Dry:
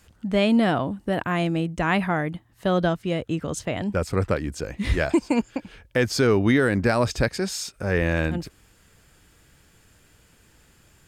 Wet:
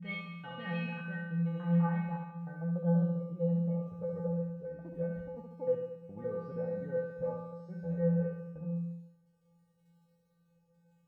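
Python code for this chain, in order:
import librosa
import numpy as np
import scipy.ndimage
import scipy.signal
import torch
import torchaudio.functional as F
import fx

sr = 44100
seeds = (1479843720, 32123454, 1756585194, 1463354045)

y = fx.block_reorder(x, sr, ms=145.0, group=3)
y = fx.filter_sweep_lowpass(y, sr, from_hz=2500.0, to_hz=650.0, start_s=0.49, end_s=2.83, q=1.9)
y = fx.dmg_crackle(y, sr, seeds[0], per_s=34.0, level_db=-47.0)
y = fx.comb_fb(y, sr, f0_hz=170.0, decay_s=1.0, harmonics='odd', damping=0.0, mix_pct=100)
y = fx.echo_feedback(y, sr, ms=70, feedback_pct=55, wet_db=-5.0)
y = y * 10.0 ** (5.0 / 20.0)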